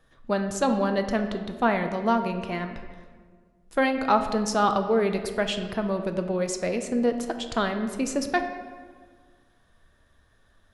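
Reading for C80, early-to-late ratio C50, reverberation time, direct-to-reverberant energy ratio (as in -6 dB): 9.5 dB, 8.5 dB, 1.6 s, 6.0 dB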